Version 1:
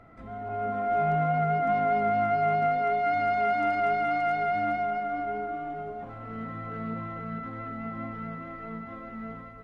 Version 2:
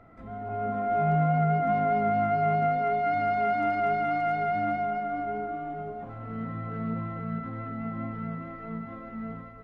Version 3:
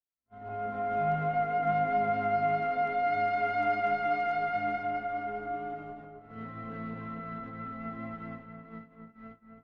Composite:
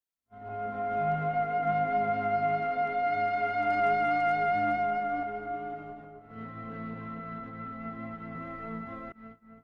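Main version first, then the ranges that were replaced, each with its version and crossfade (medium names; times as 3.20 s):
3
3.70–5.23 s: from 1
8.35–9.12 s: from 1
not used: 2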